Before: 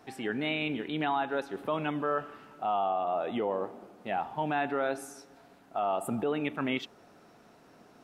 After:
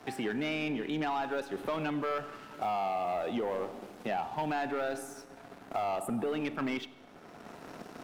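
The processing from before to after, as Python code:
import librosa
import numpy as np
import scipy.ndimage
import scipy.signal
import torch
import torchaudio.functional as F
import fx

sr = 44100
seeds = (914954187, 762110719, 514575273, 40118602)

y = fx.leveller(x, sr, passes=2)
y = fx.rev_schroeder(y, sr, rt60_s=0.84, comb_ms=30, drr_db=17.5)
y = fx.band_squash(y, sr, depth_pct=70)
y = y * librosa.db_to_amplitude(-8.0)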